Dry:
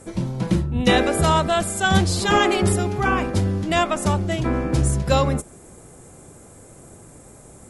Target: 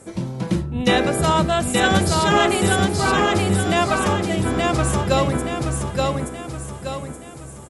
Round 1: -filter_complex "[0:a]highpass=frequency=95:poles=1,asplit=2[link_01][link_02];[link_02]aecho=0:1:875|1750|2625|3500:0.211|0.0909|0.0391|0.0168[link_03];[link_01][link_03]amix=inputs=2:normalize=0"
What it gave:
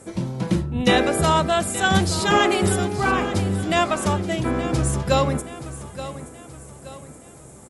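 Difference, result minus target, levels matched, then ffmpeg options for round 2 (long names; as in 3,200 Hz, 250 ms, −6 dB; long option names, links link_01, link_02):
echo-to-direct −11 dB
-filter_complex "[0:a]highpass=frequency=95:poles=1,asplit=2[link_01][link_02];[link_02]aecho=0:1:875|1750|2625|3500|4375|5250:0.75|0.322|0.139|0.0596|0.0256|0.011[link_03];[link_01][link_03]amix=inputs=2:normalize=0"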